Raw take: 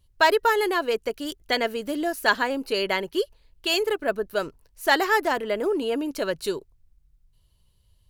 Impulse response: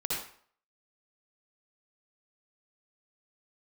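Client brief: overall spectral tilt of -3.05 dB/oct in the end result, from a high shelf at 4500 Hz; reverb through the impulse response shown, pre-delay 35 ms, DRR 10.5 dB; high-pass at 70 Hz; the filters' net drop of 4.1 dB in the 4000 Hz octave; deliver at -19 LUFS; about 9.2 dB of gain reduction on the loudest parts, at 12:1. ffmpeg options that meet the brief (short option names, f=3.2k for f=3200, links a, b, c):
-filter_complex "[0:a]highpass=70,equalizer=f=4k:t=o:g=-7,highshelf=f=4.5k:g=3,acompressor=threshold=-24dB:ratio=12,asplit=2[a][b];[1:a]atrim=start_sample=2205,adelay=35[c];[b][c]afir=irnorm=-1:irlink=0,volume=-16dB[d];[a][d]amix=inputs=2:normalize=0,volume=10.5dB"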